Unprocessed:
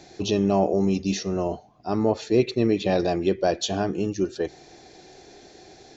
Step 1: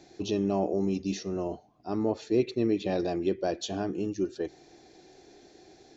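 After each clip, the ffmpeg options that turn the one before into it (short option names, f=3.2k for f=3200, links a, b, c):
-af "equalizer=f=310:t=o:w=0.75:g=5.5,volume=-8.5dB"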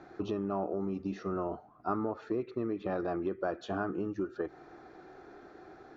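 -af "acompressor=threshold=-33dB:ratio=5,lowpass=f=1.3k:t=q:w=6.8,aemphasis=mode=production:type=75fm,volume=2dB"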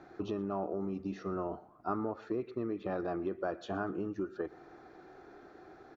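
-af "aecho=1:1:119|238|357:0.0708|0.0269|0.0102,volume=-2dB"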